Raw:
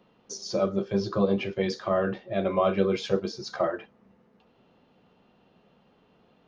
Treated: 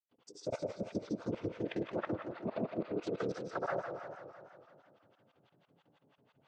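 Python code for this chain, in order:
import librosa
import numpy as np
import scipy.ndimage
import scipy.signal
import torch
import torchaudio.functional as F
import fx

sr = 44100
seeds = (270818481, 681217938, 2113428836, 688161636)

y = x + 0.73 * np.pad(x, (int(7.3 * sr / 1000.0), 0))[:len(x)]
y = fx.noise_vocoder(y, sr, seeds[0], bands=16)
y = fx.granulator(y, sr, seeds[1], grain_ms=100.0, per_s=12.0, spray_ms=100.0, spread_st=0)
y = fx.rev_spring(y, sr, rt60_s=1.4, pass_ms=(57,), chirp_ms=70, drr_db=3.5)
y = fx.harmonic_tremolo(y, sr, hz=6.1, depth_pct=100, crossover_hz=740.0)
y = fx.level_steps(y, sr, step_db=18)
y = fx.echo_feedback(y, sr, ms=154, feedback_pct=43, wet_db=-13.0)
y = fx.echo_warbled(y, sr, ms=166, feedback_pct=64, rate_hz=2.8, cents=191, wet_db=-8.5)
y = F.gain(torch.from_numpy(y), 1.0).numpy()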